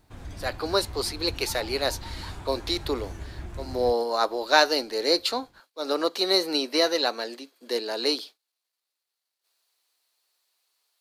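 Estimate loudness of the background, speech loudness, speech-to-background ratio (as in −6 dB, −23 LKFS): −40.5 LKFS, −26.0 LKFS, 14.5 dB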